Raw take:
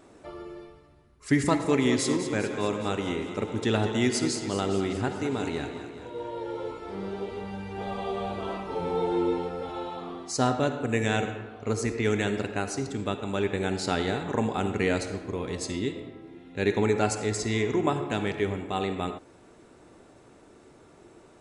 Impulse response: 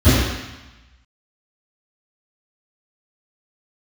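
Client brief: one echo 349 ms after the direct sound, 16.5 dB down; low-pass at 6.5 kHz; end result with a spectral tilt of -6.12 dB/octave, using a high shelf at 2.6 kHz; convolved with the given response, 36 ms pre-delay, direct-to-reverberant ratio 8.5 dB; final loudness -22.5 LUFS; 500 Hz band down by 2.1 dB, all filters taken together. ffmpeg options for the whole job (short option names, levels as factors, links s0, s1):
-filter_complex "[0:a]lowpass=6500,equalizer=f=500:t=o:g=-3,highshelf=f=2600:g=6,aecho=1:1:349:0.15,asplit=2[s0][s1];[1:a]atrim=start_sample=2205,adelay=36[s2];[s1][s2]afir=irnorm=-1:irlink=0,volume=0.0224[s3];[s0][s3]amix=inputs=2:normalize=0,volume=1.19"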